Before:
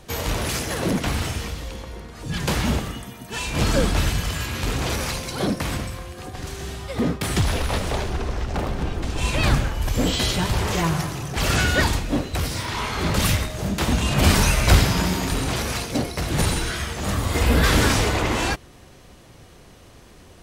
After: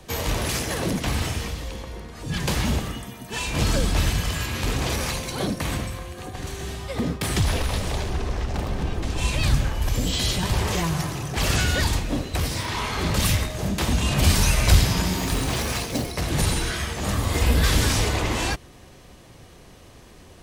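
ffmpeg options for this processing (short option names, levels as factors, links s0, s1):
-filter_complex "[0:a]asettb=1/sr,asplit=3[s0][s1][s2];[s0]atrim=end=5.094[s3];[s1]atrim=start=5.09:end=6.68,asetpts=PTS-STARTPTS,afade=t=in:d=0.004:c=qsin,afade=t=out:st=1.586:d=0.004:c=qsin,bandreject=f=5100:w=12[s4];[s2]atrim=start=6.676[s5];[s3][s4]acrossfade=d=0.004:c1=hsin:c2=qsin[s6];[s6][s5]acrossfade=d=0.004:c1=qsin:c2=hsin,asettb=1/sr,asplit=3[s7][s8][s9];[s7]atrim=end=7.634[s10];[s8]atrim=start=7.63:end=10.43,asetpts=PTS-STARTPTS,afade=t=in:d=0.004:c=qsin,afade=t=out:st=2.796:d=0.004:c=qsin,acrossover=split=180|3000[s11][s12][s13];[s12]acompressor=threshold=0.0398:ratio=6:attack=3.2:release=140:knee=2.83:detection=peak[s14];[s11][s14][s13]amix=inputs=3:normalize=0[s15];[s9]atrim=start=10.426[s16];[s10][s15]acrossfade=d=0.004:c1=hsin:c2=qsin[s17];[s17][s16]acrossfade=d=0.004:c1=qsin:c2=hsin,asettb=1/sr,asplit=3[s18][s19][s20];[s18]atrim=end=15.184[s21];[s19]atrim=start=15.18:end=16.12,asetpts=PTS-STARTPTS,afade=t=in:d=0.004:c=qsin,afade=t=out:st=0.936:d=0.004:c=qsin,acrusher=bits=4:mode=log:mix=0:aa=0.000001[s22];[s20]atrim=start=16.116[s23];[s21][s22]acrossfade=d=0.004:c1=hsin:c2=qsin[s24];[s24][s23]acrossfade=d=0.004:c1=qsin:c2=hsin,bandreject=f=1400:w=19,acrossover=split=140|3000[s25][s26][s27];[s26]acompressor=threshold=0.0631:ratio=6[s28];[s25][s28][s27]amix=inputs=3:normalize=0"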